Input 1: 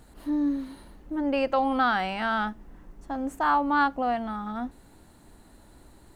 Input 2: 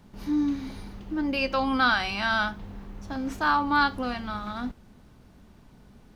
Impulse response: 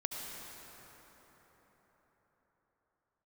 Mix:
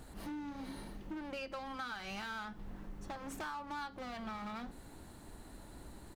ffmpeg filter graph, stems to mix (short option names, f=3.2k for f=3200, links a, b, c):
-filter_complex "[0:a]acompressor=threshold=-28dB:ratio=6,asoftclip=type=hard:threshold=-39dB,volume=0.5dB[a];[1:a]adelay=0.5,volume=-10dB[b];[a][b]amix=inputs=2:normalize=0,acompressor=threshold=-40dB:ratio=6"